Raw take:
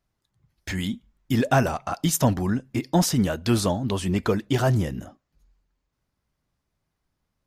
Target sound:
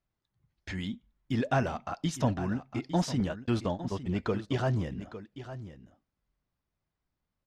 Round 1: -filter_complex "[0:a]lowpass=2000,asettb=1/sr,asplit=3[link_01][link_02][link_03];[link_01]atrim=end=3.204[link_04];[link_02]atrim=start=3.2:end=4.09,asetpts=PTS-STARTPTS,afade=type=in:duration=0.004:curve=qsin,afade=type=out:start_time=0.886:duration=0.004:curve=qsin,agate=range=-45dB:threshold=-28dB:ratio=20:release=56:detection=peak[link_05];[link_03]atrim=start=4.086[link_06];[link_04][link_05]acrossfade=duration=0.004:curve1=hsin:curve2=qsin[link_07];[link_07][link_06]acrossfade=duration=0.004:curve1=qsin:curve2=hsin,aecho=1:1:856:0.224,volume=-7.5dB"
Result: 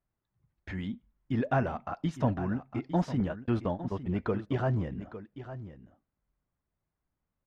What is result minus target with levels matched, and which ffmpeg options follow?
4,000 Hz band −9.0 dB
-filter_complex "[0:a]lowpass=4800,asettb=1/sr,asplit=3[link_01][link_02][link_03];[link_01]atrim=end=3.204[link_04];[link_02]atrim=start=3.2:end=4.09,asetpts=PTS-STARTPTS,afade=type=in:duration=0.004:curve=qsin,afade=type=out:start_time=0.886:duration=0.004:curve=qsin,agate=range=-45dB:threshold=-28dB:ratio=20:release=56:detection=peak[link_05];[link_03]atrim=start=4.086[link_06];[link_04][link_05]acrossfade=duration=0.004:curve1=hsin:curve2=qsin[link_07];[link_07][link_06]acrossfade=duration=0.004:curve1=qsin:curve2=hsin,aecho=1:1:856:0.224,volume=-7.5dB"

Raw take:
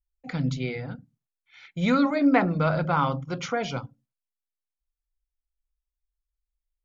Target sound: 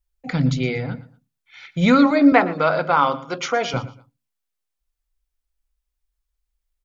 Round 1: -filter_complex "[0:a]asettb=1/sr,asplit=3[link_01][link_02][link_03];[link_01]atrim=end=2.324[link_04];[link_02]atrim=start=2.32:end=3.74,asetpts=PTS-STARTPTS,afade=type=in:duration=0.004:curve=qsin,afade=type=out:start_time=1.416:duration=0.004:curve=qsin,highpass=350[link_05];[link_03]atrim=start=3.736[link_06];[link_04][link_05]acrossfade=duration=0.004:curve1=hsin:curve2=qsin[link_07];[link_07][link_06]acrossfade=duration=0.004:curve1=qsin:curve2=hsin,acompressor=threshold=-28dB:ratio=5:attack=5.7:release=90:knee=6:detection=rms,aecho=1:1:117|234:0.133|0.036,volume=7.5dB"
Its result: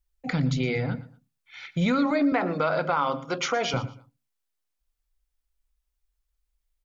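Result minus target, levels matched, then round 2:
downward compressor: peak gain reduction +12.5 dB
-filter_complex "[0:a]asettb=1/sr,asplit=3[link_01][link_02][link_03];[link_01]atrim=end=2.324[link_04];[link_02]atrim=start=2.32:end=3.74,asetpts=PTS-STARTPTS,afade=type=in:duration=0.004:curve=qsin,afade=type=out:start_time=1.416:duration=0.004:curve=qsin,highpass=350[link_05];[link_03]atrim=start=3.736[link_06];[link_04][link_05]acrossfade=duration=0.004:curve1=hsin:curve2=qsin[link_07];[link_07][link_06]acrossfade=duration=0.004:curve1=qsin:curve2=hsin,aecho=1:1:117|234:0.133|0.036,volume=7.5dB"

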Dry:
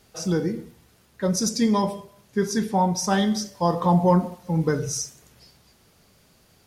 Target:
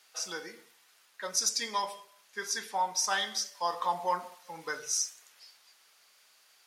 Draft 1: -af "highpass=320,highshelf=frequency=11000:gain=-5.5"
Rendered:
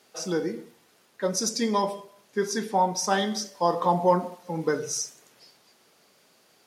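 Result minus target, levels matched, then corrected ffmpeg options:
250 Hz band +16.0 dB
-af "highpass=1200,highshelf=frequency=11000:gain=-5.5"

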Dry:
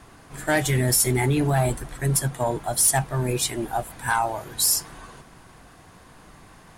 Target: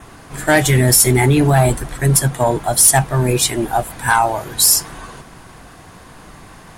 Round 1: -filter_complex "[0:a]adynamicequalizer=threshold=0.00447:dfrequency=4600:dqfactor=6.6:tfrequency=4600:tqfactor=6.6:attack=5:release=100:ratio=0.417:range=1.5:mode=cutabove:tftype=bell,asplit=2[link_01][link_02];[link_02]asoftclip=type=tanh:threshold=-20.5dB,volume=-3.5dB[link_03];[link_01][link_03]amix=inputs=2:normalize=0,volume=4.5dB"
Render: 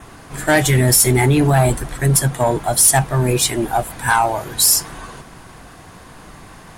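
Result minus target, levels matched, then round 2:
soft clipping: distortion +16 dB
-filter_complex "[0:a]adynamicequalizer=threshold=0.00447:dfrequency=4600:dqfactor=6.6:tfrequency=4600:tqfactor=6.6:attack=5:release=100:ratio=0.417:range=1.5:mode=cutabove:tftype=bell,asplit=2[link_01][link_02];[link_02]asoftclip=type=tanh:threshold=-9dB,volume=-3.5dB[link_03];[link_01][link_03]amix=inputs=2:normalize=0,volume=4.5dB"

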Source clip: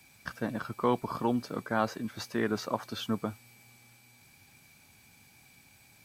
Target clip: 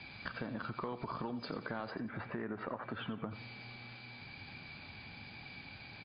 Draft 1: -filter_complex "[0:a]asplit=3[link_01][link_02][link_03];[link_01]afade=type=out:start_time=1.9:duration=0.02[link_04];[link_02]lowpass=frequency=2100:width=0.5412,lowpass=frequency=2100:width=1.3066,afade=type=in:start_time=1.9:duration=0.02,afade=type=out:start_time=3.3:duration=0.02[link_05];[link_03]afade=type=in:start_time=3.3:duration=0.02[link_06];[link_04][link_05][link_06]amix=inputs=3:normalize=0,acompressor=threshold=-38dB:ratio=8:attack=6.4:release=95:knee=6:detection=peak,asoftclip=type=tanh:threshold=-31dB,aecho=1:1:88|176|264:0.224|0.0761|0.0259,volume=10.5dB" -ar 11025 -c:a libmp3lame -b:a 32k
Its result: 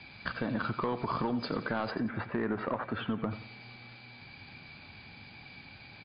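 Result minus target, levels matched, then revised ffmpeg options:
downward compressor: peak gain reduction −9.5 dB
-filter_complex "[0:a]asplit=3[link_01][link_02][link_03];[link_01]afade=type=out:start_time=1.9:duration=0.02[link_04];[link_02]lowpass=frequency=2100:width=0.5412,lowpass=frequency=2100:width=1.3066,afade=type=in:start_time=1.9:duration=0.02,afade=type=out:start_time=3.3:duration=0.02[link_05];[link_03]afade=type=in:start_time=3.3:duration=0.02[link_06];[link_04][link_05][link_06]amix=inputs=3:normalize=0,acompressor=threshold=-49dB:ratio=8:attack=6.4:release=95:knee=6:detection=peak,asoftclip=type=tanh:threshold=-31dB,aecho=1:1:88|176|264:0.224|0.0761|0.0259,volume=10.5dB" -ar 11025 -c:a libmp3lame -b:a 32k

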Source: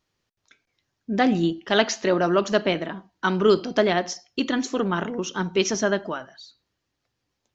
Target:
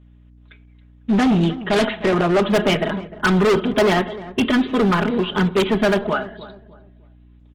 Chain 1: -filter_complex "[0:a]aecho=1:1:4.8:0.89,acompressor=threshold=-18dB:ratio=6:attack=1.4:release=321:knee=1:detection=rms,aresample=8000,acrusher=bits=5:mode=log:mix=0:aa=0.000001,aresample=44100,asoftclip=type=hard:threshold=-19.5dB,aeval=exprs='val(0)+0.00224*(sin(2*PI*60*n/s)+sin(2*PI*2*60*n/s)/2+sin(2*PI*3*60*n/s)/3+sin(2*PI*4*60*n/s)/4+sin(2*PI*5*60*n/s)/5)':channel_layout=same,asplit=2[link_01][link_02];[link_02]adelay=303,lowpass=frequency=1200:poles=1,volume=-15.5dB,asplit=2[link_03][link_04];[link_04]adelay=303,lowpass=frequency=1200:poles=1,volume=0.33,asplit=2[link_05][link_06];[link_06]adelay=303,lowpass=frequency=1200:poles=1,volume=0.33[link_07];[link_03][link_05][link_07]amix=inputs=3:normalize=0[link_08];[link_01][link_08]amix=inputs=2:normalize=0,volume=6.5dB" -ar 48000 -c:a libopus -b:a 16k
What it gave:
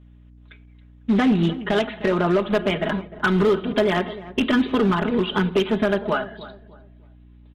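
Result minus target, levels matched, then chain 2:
downward compressor: peak gain reduction +12.5 dB
-filter_complex "[0:a]aecho=1:1:4.8:0.89,aresample=8000,acrusher=bits=5:mode=log:mix=0:aa=0.000001,aresample=44100,asoftclip=type=hard:threshold=-19.5dB,aeval=exprs='val(0)+0.00224*(sin(2*PI*60*n/s)+sin(2*PI*2*60*n/s)/2+sin(2*PI*3*60*n/s)/3+sin(2*PI*4*60*n/s)/4+sin(2*PI*5*60*n/s)/5)':channel_layout=same,asplit=2[link_01][link_02];[link_02]adelay=303,lowpass=frequency=1200:poles=1,volume=-15.5dB,asplit=2[link_03][link_04];[link_04]adelay=303,lowpass=frequency=1200:poles=1,volume=0.33,asplit=2[link_05][link_06];[link_06]adelay=303,lowpass=frequency=1200:poles=1,volume=0.33[link_07];[link_03][link_05][link_07]amix=inputs=3:normalize=0[link_08];[link_01][link_08]amix=inputs=2:normalize=0,volume=6.5dB" -ar 48000 -c:a libopus -b:a 16k

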